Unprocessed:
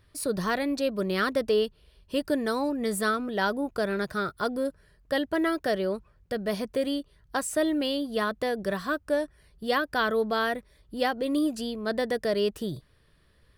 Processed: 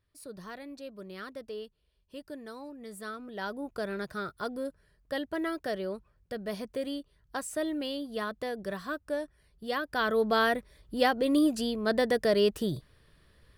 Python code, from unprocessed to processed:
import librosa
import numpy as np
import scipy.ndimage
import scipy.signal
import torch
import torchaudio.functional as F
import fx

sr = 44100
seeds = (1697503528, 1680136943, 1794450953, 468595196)

y = fx.gain(x, sr, db=fx.line((2.88, -16.0), (3.75, -6.5), (9.76, -6.5), (10.34, 1.5)))